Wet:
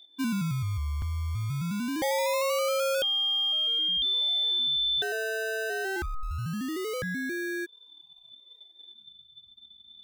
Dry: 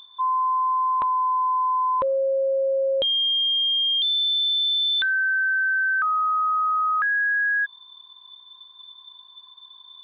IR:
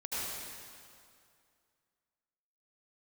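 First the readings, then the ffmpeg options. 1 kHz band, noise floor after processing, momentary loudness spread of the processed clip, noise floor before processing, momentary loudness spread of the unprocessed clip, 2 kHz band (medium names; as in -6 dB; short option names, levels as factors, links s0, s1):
-16.0 dB, -57 dBFS, 9 LU, -50 dBFS, 4 LU, -12.0 dB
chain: -filter_complex "[0:a]afftdn=nr=13:nf=-36,adynamicequalizer=threshold=0.02:dfrequency=1200:dqfactor=1.2:tfrequency=1200:tqfactor=1.2:attack=5:release=100:ratio=0.375:range=2:mode=cutabove:tftype=bell,acrossover=split=1700[s0][s1];[s0]acrusher=samples=31:mix=1:aa=0.000001:lfo=1:lforange=18.6:lforate=0.23[s2];[s2][s1]amix=inputs=2:normalize=0,volume=0.631"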